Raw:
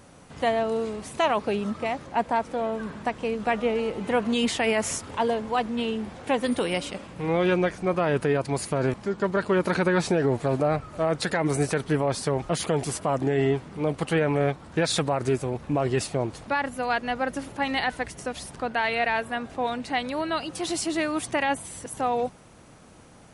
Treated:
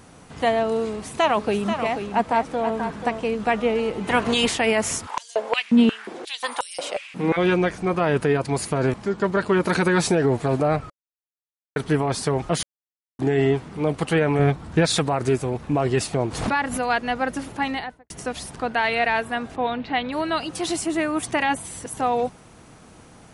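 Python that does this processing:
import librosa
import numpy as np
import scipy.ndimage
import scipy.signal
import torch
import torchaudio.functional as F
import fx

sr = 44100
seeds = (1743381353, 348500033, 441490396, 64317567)

y = fx.echo_single(x, sr, ms=485, db=-8.0, at=(1.32, 3.19), fade=0.02)
y = fx.spec_clip(y, sr, under_db=13, at=(4.07, 4.54), fade=0.02)
y = fx.filter_held_highpass(y, sr, hz=5.6, low_hz=220.0, high_hz=6400.0, at=(5.06, 7.36), fade=0.02)
y = fx.high_shelf(y, sr, hz=6700.0, db=10.0, at=(9.69, 10.15))
y = fx.low_shelf(y, sr, hz=190.0, db=8.5, at=(14.39, 14.86))
y = fx.pre_swell(y, sr, db_per_s=67.0, at=(16.13, 16.86))
y = fx.studio_fade_out(y, sr, start_s=17.56, length_s=0.54)
y = fx.cheby1_lowpass(y, sr, hz=3600.0, order=3, at=(19.55, 20.11), fade=0.02)
y = fx.peak_eq(y, sr, hz=4400.0, db=-9.5, octaves=1.0, at=(20.76, 21.23))
y = fx.edit(y, sr, fx.silence(start_s=10.9, length_s=0.86),
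    fx.silence(start_s=12.63, length_s=0.56), tone=tone)
y = fx.notch(y, sr, hz=560.0, q=12.0)
y = y * 10.0 ** (3.5 / 20.0)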